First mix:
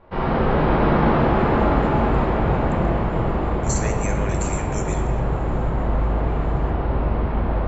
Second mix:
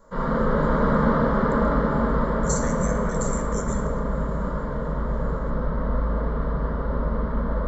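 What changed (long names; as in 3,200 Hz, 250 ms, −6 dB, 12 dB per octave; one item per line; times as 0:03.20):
speech: entry −1.20 s
master: add phaser with its sweep stopped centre 510 Hz, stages 8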